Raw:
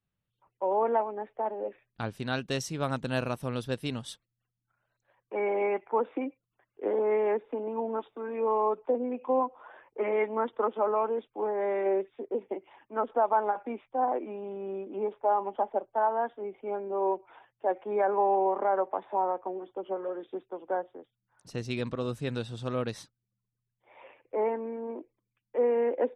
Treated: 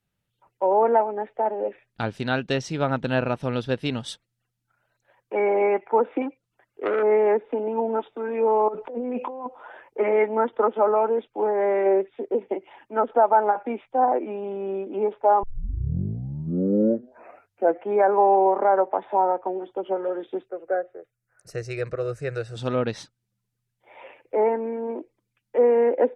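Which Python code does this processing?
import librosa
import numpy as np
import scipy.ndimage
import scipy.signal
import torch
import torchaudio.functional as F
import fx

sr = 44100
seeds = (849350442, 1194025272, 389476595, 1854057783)

y = fx.transformer_sat(x, sr, knee_hz=1100.0, at=(6.22, 7.03))
y = fx.over_compress(y, sr, threshold_db=-38.0, ratio=-1.0, at=(8.68, 9.46))
y = fx.fixed_phaser(y, sr, hz=910.0, stages=6, at=(20.48, 22.55), fade=0.02)
y = fx.edit(y, sr, fx.tape_start(start_s=15.43, length_s=2.51), tone=tone)
y = fx.env_lowpass_down(y, sr, base_hz=2300.0, full_db=-25.5)
y = fx.low_shelf(y, sr, hz=190.0, db=-3.5)
y = fx.notch(y, sr, hz=1100.0, q=8.5)
y = y * librosa.db_to_amplitude(8.0)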